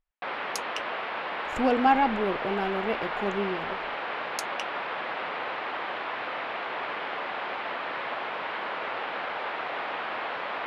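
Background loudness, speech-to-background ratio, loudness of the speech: -32.5 LUFS, 4.5 dB, -28.0 LUFS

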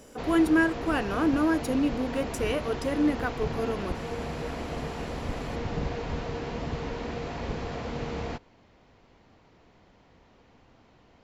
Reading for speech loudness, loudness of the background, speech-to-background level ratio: -27.5 LUFS, -34.5 LUFS, 7.0 dB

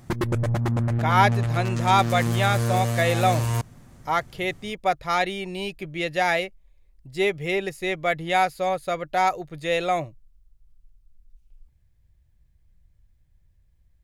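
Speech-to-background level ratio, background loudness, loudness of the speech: 0.5 dB, -25.0 LUFS, -24.5 LUFS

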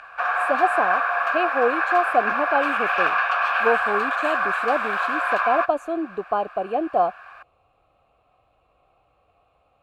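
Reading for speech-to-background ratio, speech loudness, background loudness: -2.5 dB, -25.0 LUFS, -22.5 LUFS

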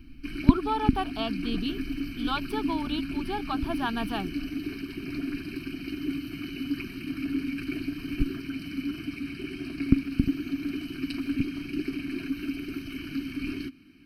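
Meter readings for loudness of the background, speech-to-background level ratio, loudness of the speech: -32.0 LUFS, -0.5 dB, -32.5 LUFS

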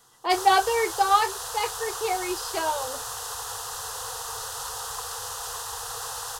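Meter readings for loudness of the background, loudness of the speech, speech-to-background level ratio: -32.5 LUFS, -25.0 LUFS, 7.5 dB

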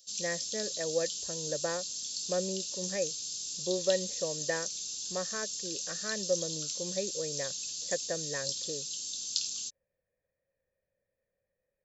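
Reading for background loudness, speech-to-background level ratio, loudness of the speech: -35.0 LUFS, -2.0 dB, -37.0 LUFS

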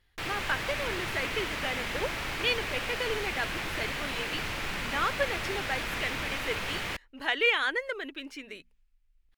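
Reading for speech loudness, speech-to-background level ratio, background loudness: -32.5 LUFS, 0.5 dB, -33.0 LUFS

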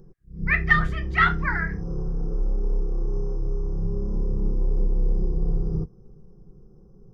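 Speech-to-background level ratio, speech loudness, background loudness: 6.0 dB, -23.0 LUFS, -29.0 LUFS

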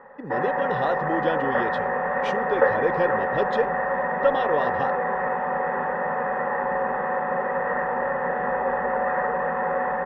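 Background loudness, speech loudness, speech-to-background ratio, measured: -25.0 LUFS, -28.5 LUFS, -3.5 dB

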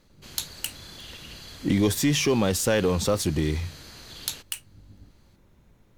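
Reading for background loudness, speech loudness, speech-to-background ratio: -43.0 LUFS, -26.0 LUFS, 17.0 dB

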